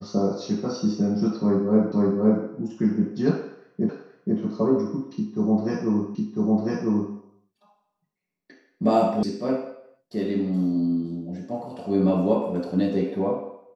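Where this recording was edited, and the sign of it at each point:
1.92 s: repeat of the last 0.52 s
3.89 s: repeat of the last 0.48 s
6.15 s: repeat of the last 1 s
9.23 s: sound stops dead

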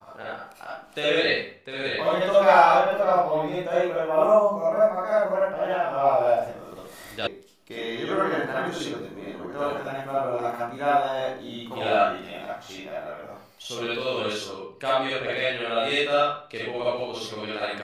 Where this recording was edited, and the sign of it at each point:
7.27 s: sound stops dead

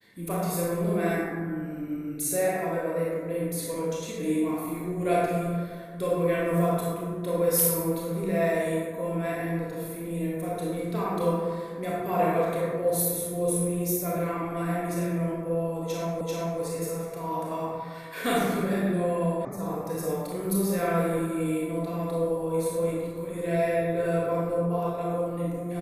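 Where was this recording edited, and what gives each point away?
16.21 s: repeat of the last 0.39 s
19.45 s: sound stops dead

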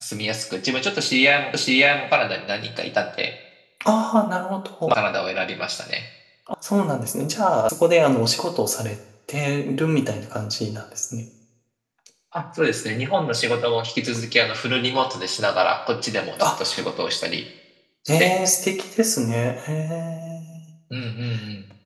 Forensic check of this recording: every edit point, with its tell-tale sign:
1.54 s: repeat of the last 0.56 s
4.94 s: sound stops dead
6.54 s: sound stops dead
7.69 s: sound stops dead

